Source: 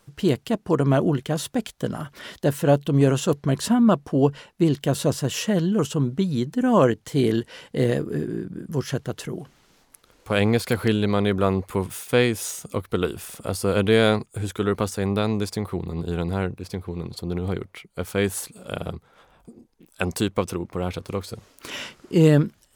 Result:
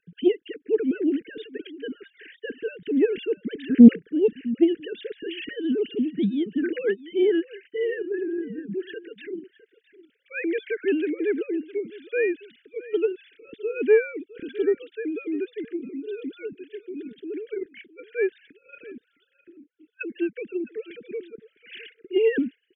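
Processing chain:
three sine waves on the formant tracks
Chebyshev band-stop filter 450–1,600 Hz, order 4
single-tap delay 660 ms −18.5 dB
highs frequency-modulated by the lows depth 0.22 ms
level −1 dB

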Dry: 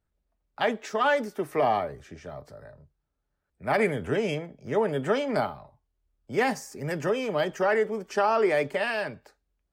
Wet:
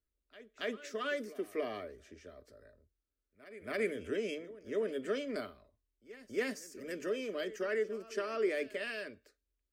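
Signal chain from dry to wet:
phaser with its sweep stopped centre 350 Hz, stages 4
echo ahead of the sound 278 ms −17.5 dB
level −7.5 dB

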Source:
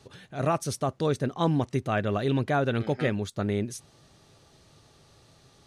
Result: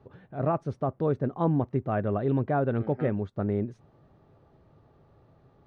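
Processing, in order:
low-pass filter 1,100 Hz 12 dB per octave

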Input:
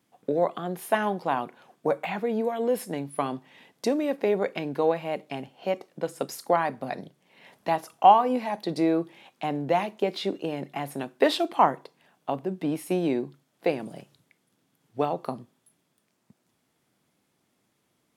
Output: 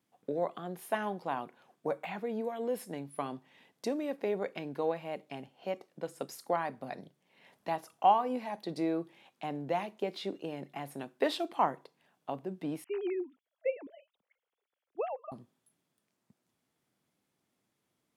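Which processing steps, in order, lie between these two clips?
0:12.84–0:15.32: three sine waves on the formant tracks
level −8.5 dB

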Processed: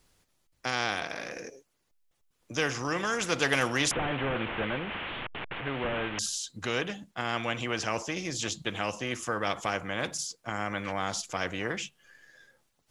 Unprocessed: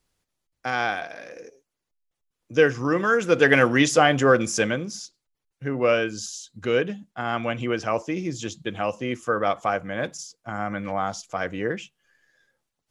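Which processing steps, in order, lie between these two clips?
0:03.91–0:06.19: linear delta modulator 16 kbit/s, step −33.5 dBFS
de-essing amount 35%
every bin compressed towards the loudest bin 2 to 1
level −7.5 dB

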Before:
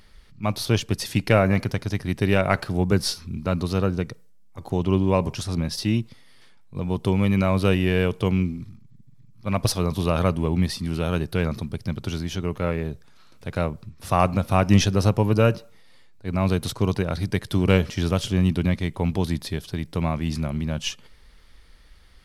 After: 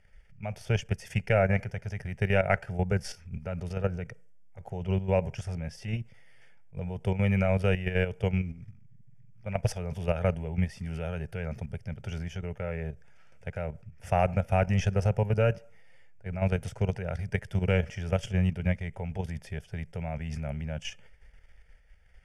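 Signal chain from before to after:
low-pass filter 6,500 Hz 12 dB per octave
output level in coarse steps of 10 dB
phaser with its sweep stopped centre 1,100 Hz, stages 6

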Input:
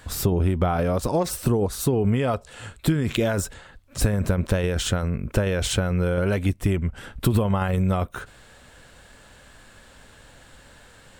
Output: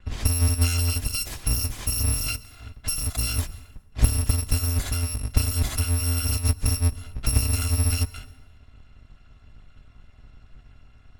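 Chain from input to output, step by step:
samples in bit-reversed order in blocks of 256 samples
noise gate with hold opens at −42 dBFS
low-pass that shuts in the quiet parts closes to 2,300 Hz, open at −19.5 dBFS
bass and treble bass +11 dB, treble −2 dB
dense smooth reverb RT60 1.2 s, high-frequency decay 0.65×, pre-delay 110 ms, DRR 19 dB
level −3.5 dB

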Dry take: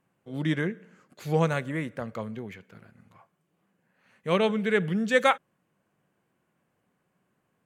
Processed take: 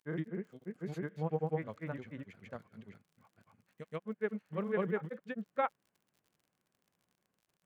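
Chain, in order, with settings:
treble cut that deepens with the level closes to 1,400 Hz, closed at −23.5 dBFS
granular cloud, spray 545 ms
surface crackle 56 per second −48 dBFS
level −8.5 dB

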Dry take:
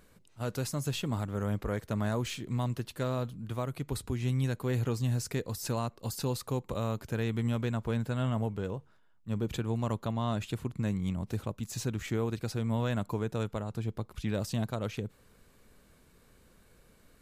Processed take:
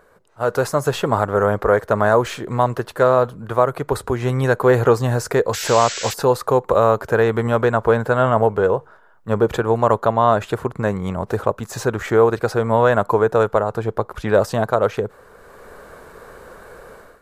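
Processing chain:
flat-topped bell 820 Hz +14.5 dB 2.5 octaves
sound drawn into the spectrogram noise, 0:05.53–0:06.14, 1,300–8,000 Hz −35 dBFS
automatic gain control gain up to 14 dB
level −1 dB

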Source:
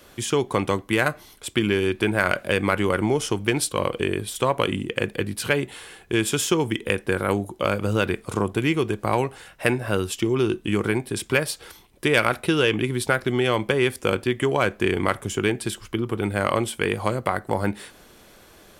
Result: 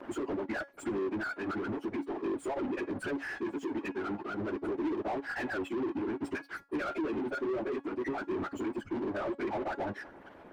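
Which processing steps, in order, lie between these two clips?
spectral envelope exaggerated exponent 3
treble cut that deepens with the level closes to 2,100 Hz, closed at −18.5 dBFS
gain on a spectral selection 0:09.46–0:10.14, 730–4,000 Hz +11 dB
downward compressor 5 to 1, threshold −35 dBFS, peak gain reduction 20 dB
phaser with its sweep stopped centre 720 Hz, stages 8
auto-filter notch square 0.25 Hz 550–5,200 Hz
dead-zone distortion −52.5 dBFS
time stretch by phase vocoder 0.56×
tuned comb filter 280 Hz, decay 0.25 s, harmonics all, mix 40%
mid-hump overdrive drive 28 dB, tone 1,000 Hz, clips at −33.5 dBFS
level +9 dB

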